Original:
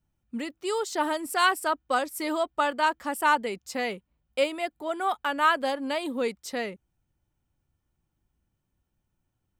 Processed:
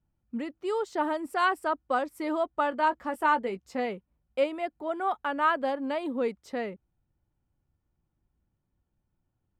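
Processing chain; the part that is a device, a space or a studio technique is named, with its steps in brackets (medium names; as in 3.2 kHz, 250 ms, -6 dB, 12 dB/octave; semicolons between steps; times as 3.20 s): through cloth (treble shelf 3.1 kHz -18 dB); 2.71–3.86 s: doubling 16 ms -10 dB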